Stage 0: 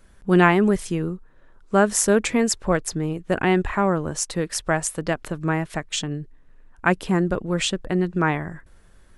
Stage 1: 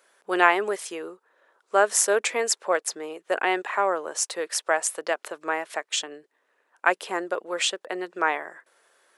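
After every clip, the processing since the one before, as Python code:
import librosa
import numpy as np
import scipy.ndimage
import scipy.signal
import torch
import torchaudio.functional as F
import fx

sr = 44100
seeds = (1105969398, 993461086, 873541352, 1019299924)

y = scipy.signal.sosfilt(scipy.signal.butter(4, 450.0, 'highpass', fs=sr, output='sos'), x)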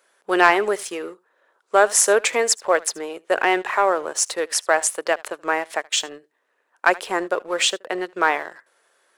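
y = x + 10.0 ** (-21.5 / 20.0) * np.pad(x, (int(76 * sr / 1000.0), 0))[:len(x)]
y = fx.leveller(y, sr, passes=1)
y = F.gain(torch.from_numpy(y), 1.5).numpy()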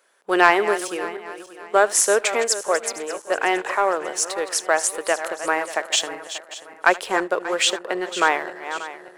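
y = fx.reverse_delay_fb(x, sr, ms=293, feedback_pct=59, wet_db=-12)
y = fx.rider(y, sr, range_db=5, speed_s=2.0)
y = F.gain(torch.from_numpy(y), -2.5).numpy()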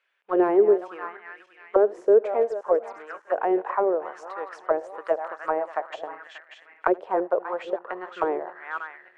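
y = fx.auto_wah(x, sr, base_hz=410.0, top_hz=2600.0, q=2.9, full_db=-15.0, direction='down')
y = fx.riaa(y, sr, side='playback')
y = F.gain(torch.from_numpy(y), 1.5).numpy()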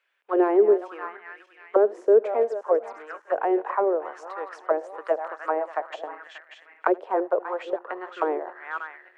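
y = scipy.signal.sosfilt(scipy.signal.butter(8, 220.0, 'highpass', fs=sr, output='sos'), x)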